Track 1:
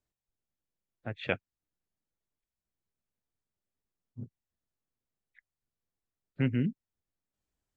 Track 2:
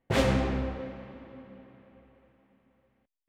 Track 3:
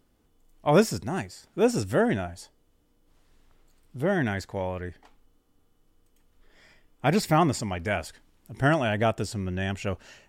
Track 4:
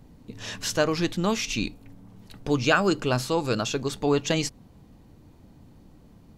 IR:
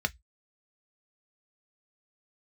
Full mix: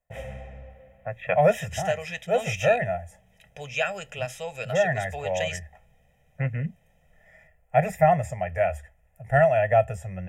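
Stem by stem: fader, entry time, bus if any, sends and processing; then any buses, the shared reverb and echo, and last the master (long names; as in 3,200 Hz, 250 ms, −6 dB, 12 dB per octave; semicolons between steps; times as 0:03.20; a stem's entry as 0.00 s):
+2.5 dB, 0.00 s, send −12 dB, parametric band 1,100 Hz +13.5 dB 0.39 octaves
−13.0 dB, 0.00 s, no send, no processing
−2.5 dB, 0.70 s, send −6 dB, parametric band 280 Hz −6 dB 0.37 octaves
−8.0 dB, 1.10 s, send −16.5 dB, meter weighting curve D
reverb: on, RT60 0.10 s, pre-delay 3 ms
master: phaser with its sweep stopped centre 1,200 Hz, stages 6; comb filter 1.6 ms, depth 63%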